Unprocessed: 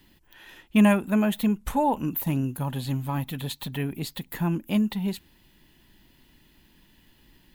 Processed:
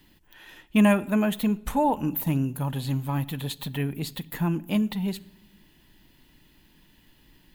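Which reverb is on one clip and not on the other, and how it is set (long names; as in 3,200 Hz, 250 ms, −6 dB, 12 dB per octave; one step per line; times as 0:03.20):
rectangular room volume 3,700 cubic metres, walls furnished, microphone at 0.46 metres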